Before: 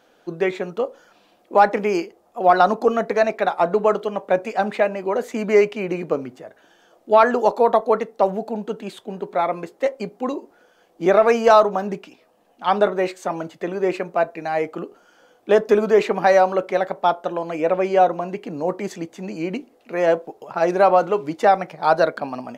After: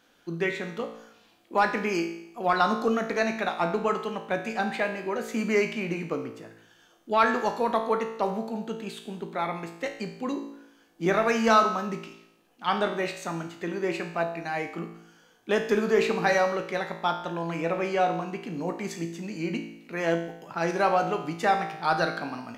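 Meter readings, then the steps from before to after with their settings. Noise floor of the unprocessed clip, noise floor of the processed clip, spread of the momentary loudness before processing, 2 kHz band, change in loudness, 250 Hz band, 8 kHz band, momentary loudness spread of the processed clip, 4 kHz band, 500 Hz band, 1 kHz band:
−58 dBFS, −61 dBFS, 14 LU, −2.0 dB, −7.5 dB, −3.5 dB, can't be measured, 12 LU, −1.0 dB, −9.5 dB, −7.5 dB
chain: parametric band 590 Hz −11 dB 1.5 octaves
tuned comb filter 56 Hz, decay 0.78 s, harmonics all, mix 80%
level +8.5 dB

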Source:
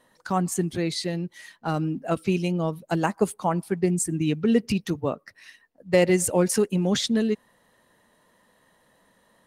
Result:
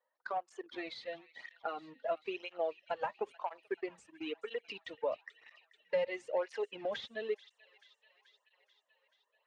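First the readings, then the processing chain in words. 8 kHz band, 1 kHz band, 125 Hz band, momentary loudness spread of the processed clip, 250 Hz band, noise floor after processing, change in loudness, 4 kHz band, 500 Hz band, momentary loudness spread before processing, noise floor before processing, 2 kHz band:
below −35 dB, −10.0 dB, below −35 dB, 9 LU, −25.0 dB, −82 dBFS, −15.0 dB, −14.5 dB, −11.5 dB, 8 LU, −64 dBFS, −10.0 dB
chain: high-pass filter 540 Hz 24 dB per octave
noise reduction from a noise print of the clip's start 11 dB
dynamic equaliser 3,400 Hz, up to +8 dB, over −49 dBFS, Q 1.7
leveller curve on the samples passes 2
downward compressor 4 to 1, threshold −31 dBFS, peak gain reduction 14.5 dB
head-to-tape spacing loss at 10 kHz 43 dB
on a send: delay with a high-pass on its return 434 ms, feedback 66%, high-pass 1,900 Hz, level −15.5 dB
on the sum: through-zero flanger with one copy inverted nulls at 1 Hz, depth 3.1 ms
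level +2.5 dB

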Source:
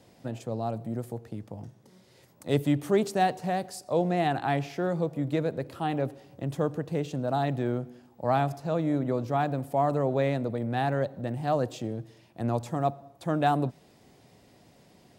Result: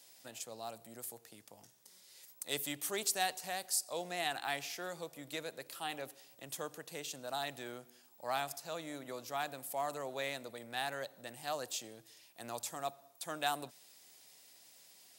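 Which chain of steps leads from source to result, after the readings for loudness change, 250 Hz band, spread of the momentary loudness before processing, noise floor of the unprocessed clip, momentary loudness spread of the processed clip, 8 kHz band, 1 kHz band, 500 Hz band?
−10.5 dB, −20.5 dB, 12 LU, −59 dBFS, 22 LU, +8.5 dB, −11.0 dB, −14.5 dB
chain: first difference
level +8 dB

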